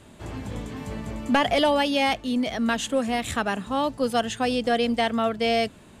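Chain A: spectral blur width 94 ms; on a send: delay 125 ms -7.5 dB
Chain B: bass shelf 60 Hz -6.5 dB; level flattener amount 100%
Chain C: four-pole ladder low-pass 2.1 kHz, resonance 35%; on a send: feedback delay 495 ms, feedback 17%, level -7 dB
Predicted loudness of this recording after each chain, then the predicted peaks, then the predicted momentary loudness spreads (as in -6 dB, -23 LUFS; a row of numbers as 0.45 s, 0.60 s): -26.0 LUFS, -18.0 LUFS, -31.0 LUFS; -10.5 dBFS, -5.5 dBFS, -15.5 dBFS; 13 LU, 1 LU, 14 LU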